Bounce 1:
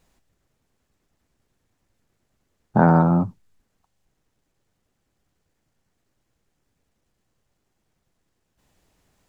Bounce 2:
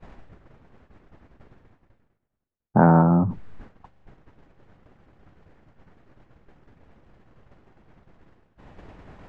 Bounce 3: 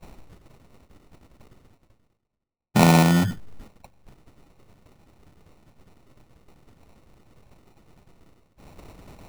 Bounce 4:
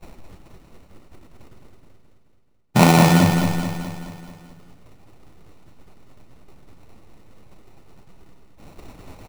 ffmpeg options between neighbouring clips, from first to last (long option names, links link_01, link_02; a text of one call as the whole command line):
ffmpeg -i in.wav -af "lowpass=1800,agate=range=-33dB:threshold=-57dB:ratio=3:detection=peak,areverse,acompressor=mode=upward:threshold=-19dB:ratio=2.5,areverse" out.wav
ffmpeg -i in.wav -af "acrusher=samples=27:mix=1:aa=0.000001" out.wav
ffmpeg -i in.wav -af "flanger=delay=2.4:depth=9.1:regen=56:speed=1.7:shape=sinusoidal,aecho=1:1:215|430|645|860|1075|1290|1505:0.531|0.287|0.155|0.0836|0.0451|0.0244|0.0132,volume=7dB" out.wav